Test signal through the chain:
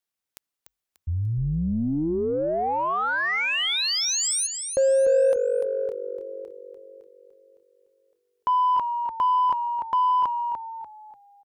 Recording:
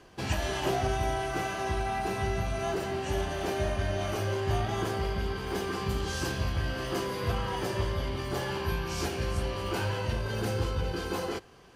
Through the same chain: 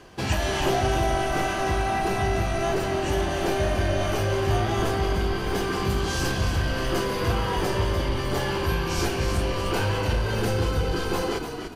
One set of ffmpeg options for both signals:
-filter_complex "[0:a]asplit=5[s0][s1][s2][s3][s4];[s1]adelay=294,afreqshift=-48,volume=0.422[s5];[s2]adelay=588,afreqshift=-96,volume=0.148[s6];[s3]adelay=882,afreqshift=-144,volume=0.0519[s7];[s4]adelay=1176,afreqshift=-192,volume=0.018[s8];[s0][s5][s6][s7][s8]amix=inputs=5:normalize=0,asplit=2[s9][s10];[s10]asoftclip=type=tanh:threshold=0.0473,volume=0.596[s11];[s9][s11]amix=inputs=2:normalize=0,volume=1.33"

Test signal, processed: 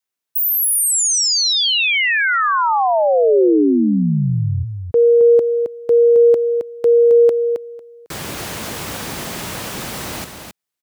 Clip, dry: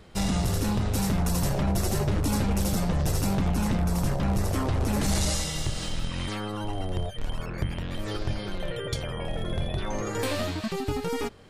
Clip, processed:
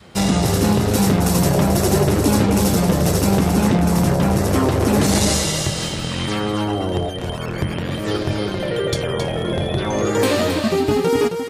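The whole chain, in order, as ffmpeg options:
-filter_complex "[0:a]highpass=94,adynamicequalizer=threshold=0.01:dfrequency=390:dqfactor=1.3:tfrequency=390:tqfactor=1.3:attack=5:release=100:ratio=0.375:range=2.5:mode=boostabove:tftype=bell,asplit=2[s0][s1];[s1]aecho=0:1:268:0.447[s2];[s0][s2]amix=inputs=2:normalize=0,volume=2.82"

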